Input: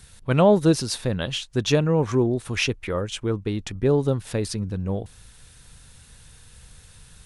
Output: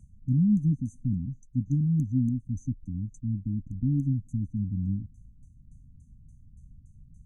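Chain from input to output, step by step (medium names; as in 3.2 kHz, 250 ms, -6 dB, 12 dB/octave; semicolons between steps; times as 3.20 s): LFO low-pass saw down 3.5 Hz 420–3400 Hz; brick-wall FIR band-stop 290–6000 Hz; trim -1.5 dB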